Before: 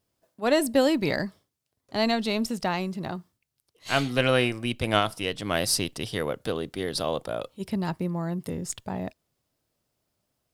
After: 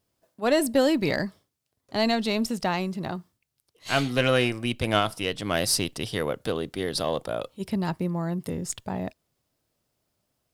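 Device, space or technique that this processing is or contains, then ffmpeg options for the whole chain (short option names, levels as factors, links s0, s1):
parallel distortion: -filter_complex "[0:a]asplit=2[s0][s1];[s1]asoftclip=type=hard:threshold=0.1,volume=0.531[s2];[s0][s2]amix=inputs=2:normalize=0,volume=0.75"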